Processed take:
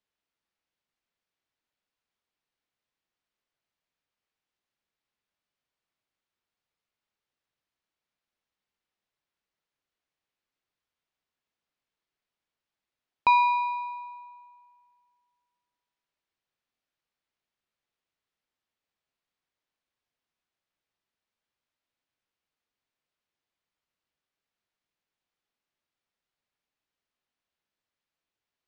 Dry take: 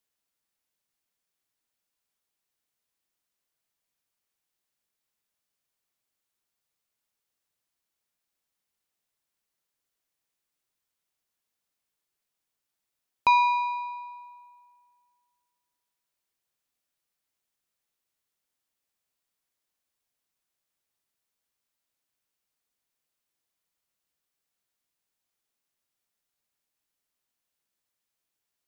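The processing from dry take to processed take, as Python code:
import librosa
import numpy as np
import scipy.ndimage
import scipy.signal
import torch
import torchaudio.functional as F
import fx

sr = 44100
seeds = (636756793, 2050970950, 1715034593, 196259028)

y = scipy.signal.sosfilt(scipy.signal.butter(2, 3900.0, 'lowpass', fs=sr, output='sos'), x)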